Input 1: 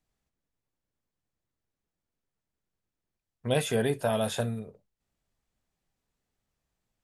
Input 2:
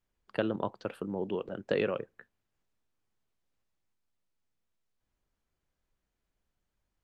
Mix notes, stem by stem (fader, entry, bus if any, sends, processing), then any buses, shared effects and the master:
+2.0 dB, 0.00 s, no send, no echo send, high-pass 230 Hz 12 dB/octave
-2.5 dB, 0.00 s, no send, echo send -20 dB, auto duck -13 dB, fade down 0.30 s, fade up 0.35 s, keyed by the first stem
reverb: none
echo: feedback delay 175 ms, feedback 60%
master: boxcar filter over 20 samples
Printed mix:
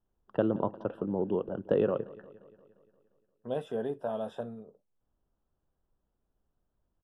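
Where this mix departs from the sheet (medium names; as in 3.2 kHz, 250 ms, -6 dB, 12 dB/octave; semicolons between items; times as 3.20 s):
stem 1 +2.0 dB -> -4.5 dB; stem 2 -2.5 dB -> +4.0 dB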